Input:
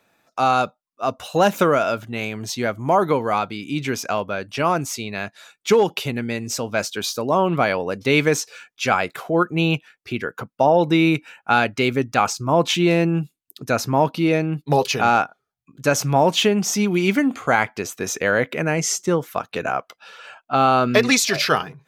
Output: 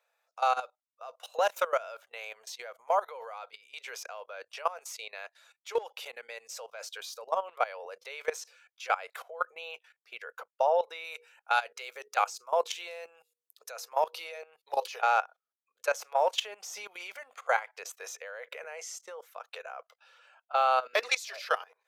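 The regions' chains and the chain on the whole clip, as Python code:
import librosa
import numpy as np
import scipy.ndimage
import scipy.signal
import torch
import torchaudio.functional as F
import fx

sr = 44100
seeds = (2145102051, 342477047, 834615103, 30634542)

y = fx.chain(x, sr, fx.bass_treble(bass_db=-5, treble_db=6),
    fx.hum_notches(base_hz=60, count=8), at=(11.04, 14.43))
y = scipy.signal.sosfilt(scipy.signal.ellip(4, 1.0, 40, 490.0, 'highpass', fs=sr, output='sos'), y)
y = fx.level_steps(y, sr, step_db=18)
y = F.gain(torch.from_numpy(y), -6.0).numpy()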